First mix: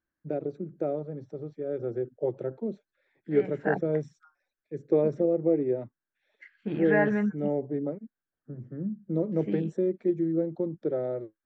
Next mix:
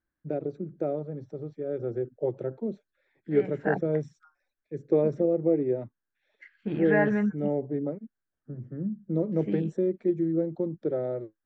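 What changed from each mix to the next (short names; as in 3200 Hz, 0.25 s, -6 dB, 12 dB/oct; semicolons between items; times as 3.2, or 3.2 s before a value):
master: add low shelf 83 Hz +7.5 dB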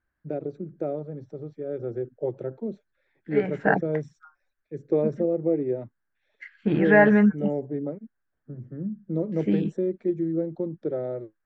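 second voice +8.0 dB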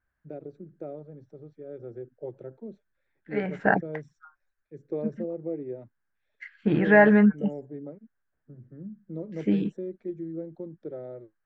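first voice -9.0 dB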